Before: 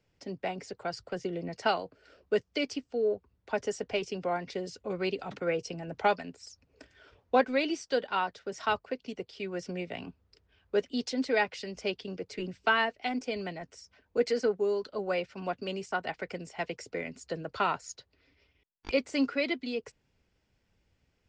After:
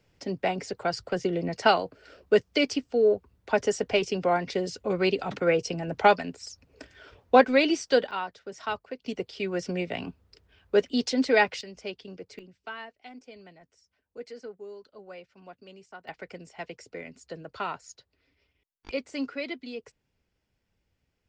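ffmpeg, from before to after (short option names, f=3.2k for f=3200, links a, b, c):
-af "asetnsamples=n=441:p=0,asendcmd='8.11 volume volume -2.5dB;9.06 volume volume 6dB;11.61 volume volume -4dB;12.39 volume volume -13.5dB;16.08 volume volume -4dB',volume=7dB"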